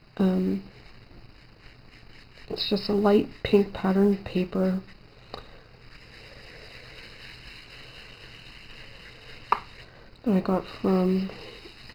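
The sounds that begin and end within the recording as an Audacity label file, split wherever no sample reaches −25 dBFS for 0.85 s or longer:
2.510000	5.340000	sound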